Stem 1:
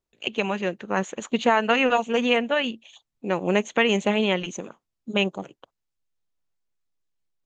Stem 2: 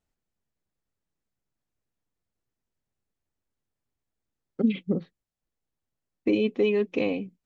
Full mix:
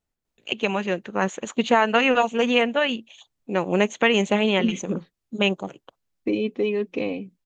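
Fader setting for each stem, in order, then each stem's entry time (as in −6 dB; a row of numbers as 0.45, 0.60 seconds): +1.5, −0.5 decibels; 0.25, 0.00 seconds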